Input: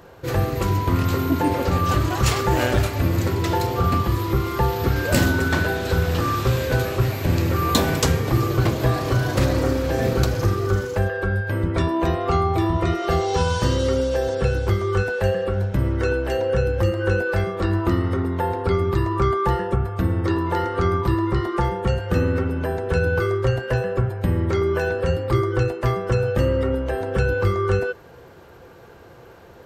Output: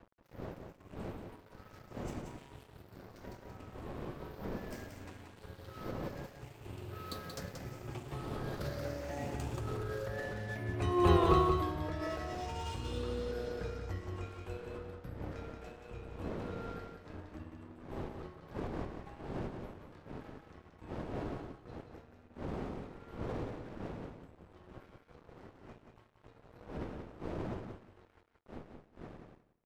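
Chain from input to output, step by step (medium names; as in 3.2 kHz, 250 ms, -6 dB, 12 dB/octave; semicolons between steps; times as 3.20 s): drifting ripple filter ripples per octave 0.63, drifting +0.65 Hz, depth 8 dB; Doppler pass-by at 11.18 s, 28 m/s, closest 3.3 m; wind noise 430 Hz -51 dBFS; in parallel at +2.5 dB: compressor with a negative ratio -43 dBFS, ratio -0.5; on the sum: crossover distortion -46 dBFS; on a send: feedback delay 180 ms, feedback 17%, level -6 dB; on the sum: trim -4 dB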